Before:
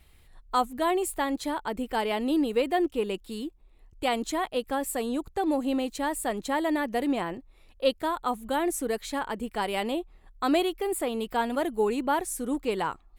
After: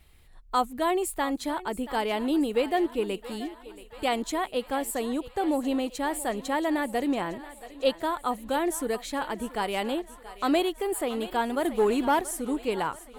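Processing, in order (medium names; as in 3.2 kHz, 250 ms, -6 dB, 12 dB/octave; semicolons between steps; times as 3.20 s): thinning echo 679 ms, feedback 69%, high-pass 420 Hz, level -15 dB; 11.65–12.21 s: waveshaping leveller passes 1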